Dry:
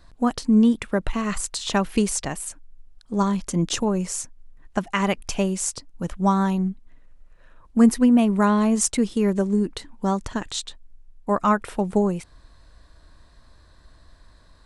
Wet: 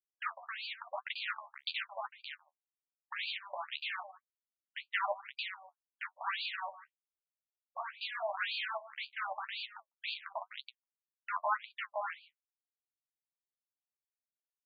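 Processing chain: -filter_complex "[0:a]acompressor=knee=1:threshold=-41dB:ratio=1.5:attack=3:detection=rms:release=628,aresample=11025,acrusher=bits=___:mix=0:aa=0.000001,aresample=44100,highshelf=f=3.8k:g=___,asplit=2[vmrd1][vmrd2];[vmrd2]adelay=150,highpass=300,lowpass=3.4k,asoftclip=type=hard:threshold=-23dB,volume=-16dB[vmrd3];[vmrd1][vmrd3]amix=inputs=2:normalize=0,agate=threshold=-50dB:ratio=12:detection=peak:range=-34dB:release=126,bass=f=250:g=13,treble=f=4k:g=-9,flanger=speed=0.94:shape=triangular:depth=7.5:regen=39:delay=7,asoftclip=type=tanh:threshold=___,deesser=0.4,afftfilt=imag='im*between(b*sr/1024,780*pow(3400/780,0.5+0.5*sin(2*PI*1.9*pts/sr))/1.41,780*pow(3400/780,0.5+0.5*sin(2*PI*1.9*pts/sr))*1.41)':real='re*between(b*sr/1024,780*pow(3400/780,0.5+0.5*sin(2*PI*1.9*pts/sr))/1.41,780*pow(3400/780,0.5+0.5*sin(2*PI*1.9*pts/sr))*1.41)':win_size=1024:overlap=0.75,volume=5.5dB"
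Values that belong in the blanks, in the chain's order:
4, 8.5, -16.5dB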